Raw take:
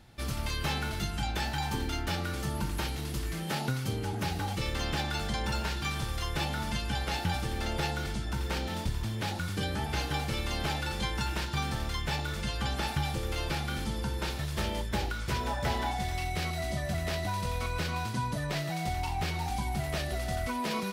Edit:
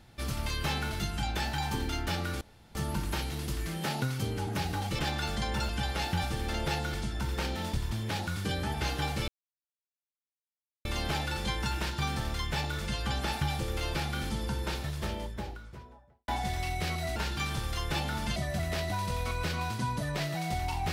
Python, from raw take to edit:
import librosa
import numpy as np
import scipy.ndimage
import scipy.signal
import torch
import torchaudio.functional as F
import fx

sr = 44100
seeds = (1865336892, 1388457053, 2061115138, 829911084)

y = fx.studio_fade_out(x, sr, start_s=14.1, length_s=1.73)
y = fx.edit(y, sr, fx.insert_room_tone(at_s=2.41, length_s=0.34),
    fx.cut(start_s=4.65, length_s=0.26),
    fx.move(start_s=5.61, length_s=1.2, to_s=16.71),
    fx.insert_silence(at_s=10.4, length_s=1.57), tone=tone)